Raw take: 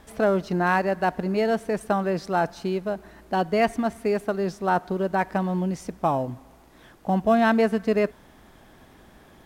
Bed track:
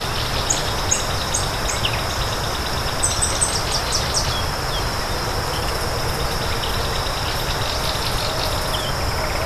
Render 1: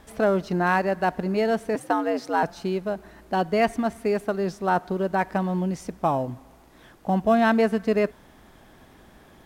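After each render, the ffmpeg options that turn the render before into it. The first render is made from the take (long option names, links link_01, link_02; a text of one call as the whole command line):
ffmpeg -i in.wav -filter_complex "[0:a]asettb=1/sr,asplit=3[link_01][link_02][link_03];[link_01]atrim=end=1.754[link_04];[link_02]atrim=start=1.75:end=2.43,asetpts=PTS-STARTPTS,afade=type=in:duration=0.004:curve=qsin,afade=type=out:start_time=0.676:duration=0.004:curve=qsin,afreqshift=92[link_05];[link_03]atrim=start=2.426[link_06];[link_04][link_05]acrossfade=duration=0.004:curve1=hsin:curve2=qsin[link_07];[link_07][link_06]acrossfade=duration=0.004:curve1=qsin:curve2=hsin" out.wav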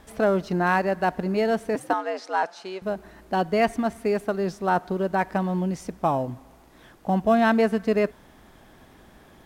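ffmpeg -i in.wav -filter_complex "[0:a]asettb=1/sr,asplit=3[link_01][link_02][link_03];[link_01]atrim=end=1.934[link_04];[link_02]atrim=start=1.93:end=2.82,asetpts=PTS-STARTPTS,afade=type=in:duration=0.004:curve=qsin,afade=type=out:start_time=0.886:duration=0.004:curve=qsin,highpass=550,lowpass=7500[link_05];[link_03]atrim=start=2.816[link_06];[link_04][link_05]acrossfade=duration=0.004:curve1=hsin:curve2=qsin[link_07];[link_07][link_06]acrossfade=duration=0.004:curve1=qsin:curve2=hsin" out.wav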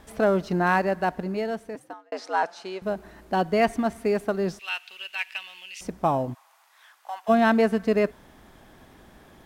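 ffmpeg -i in.wav -filter_complex "[0:a]asettb=1/sr,asplit=3[link_01][link_02][link_03];[link_01]atrim=end=4.594[link_04];[link_02]atrim=start=4.59:end=5.81,asetpts=PTS-STARTPTS,afade=type=in:duration=0.004:curve=qsin,afade=type=out:start_time=1.216:duration=0.004:curve=qsin,highpass=frequency=2700:width_type=q:width=11[link_05];[link_03]atrim=start=5.806[link_06];[link_04][link_05]acrossfade=duration=0.004:curve1=hsin:curve2=qsin[link_07];[link_07][link_06]acrossfade=duration=0.004:curve1=qsin:curve2=hsin,asplit=3[link_08][link_09][link_10];[link_08]afade=type=out:start_time=6.33:duration=0.02[link_11];[link_09]highpass=frequency=930:width=0.5412,highpass=frequency=930:width=1.3066,afade=type=in:start_time=6.33:duration=0.02,afade=type=out:start_time=7.28:duration=0.02[link_12];[link_10]afade=type=in:start_time=7.28:duration=0.02[link_13];[link_11][link_12][link_13]amix=inputs=3:normalize=0,asplit=2[link_14][link_15];[link_14]atrim=end=2.12,asetpts=PTS-STARTPTS,afade=type=out:start_time=0.83:duration=1.29[link_16];[link_15]atrim=start=2.12,asetpts=PTS-STARTPTS,afade=type=in:duration=0.004:curve=hsin[link_17];[link_16][link_17]concat=n=2:v=0:a=1" out.wav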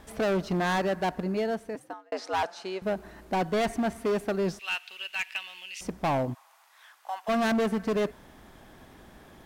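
ffmpeg -i in.wav -af "asoftclip=type=hard:threshold=-23dB" out.wav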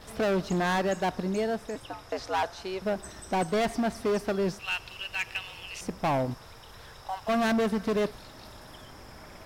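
ffmpeg -i in.wav -i bed.wav -filter_complex "[1:a]volume=-27dB[link_01];[0:a][link_01]amix=inputs=2:normalize=0" out.wav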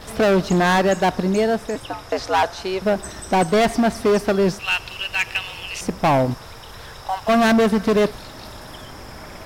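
ffmpeg -i in.wav -af "volume=10dB" out.wav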